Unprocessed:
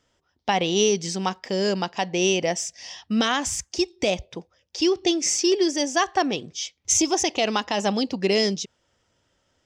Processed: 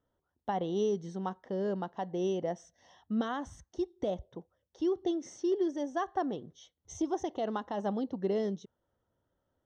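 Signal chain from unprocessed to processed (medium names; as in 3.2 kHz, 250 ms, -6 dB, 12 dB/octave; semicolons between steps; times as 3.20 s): boxcar filter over 18 samples; trim -8.5 dB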